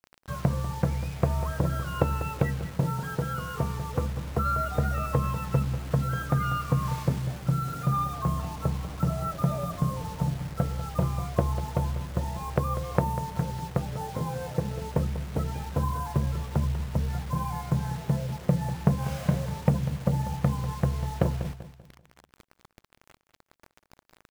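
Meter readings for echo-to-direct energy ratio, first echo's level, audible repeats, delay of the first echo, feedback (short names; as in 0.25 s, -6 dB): -12.5 dB, -13.0 dB, 3, 0.194 s, 36%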